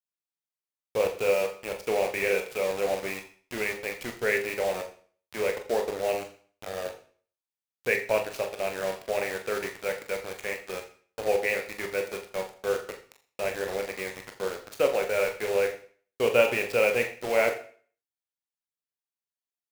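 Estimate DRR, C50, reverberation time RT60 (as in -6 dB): 3.5 dB, 11.0 dB, 0.45 s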